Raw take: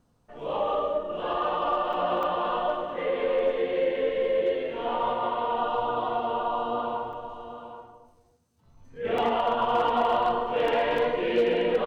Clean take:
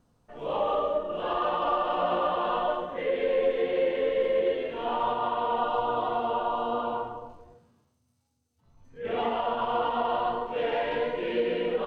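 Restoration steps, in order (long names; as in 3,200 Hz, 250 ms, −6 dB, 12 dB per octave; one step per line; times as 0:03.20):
clipped peaks rebuilt −16.5 dBFS
repair the gap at 0:01.93/0:02.23/0:07.13/0:09.18/0:10.68/0:10.98, 3.2 ms
echo removal 782 ms −11.5 dB
level correction −3.5 dB, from 0:08.05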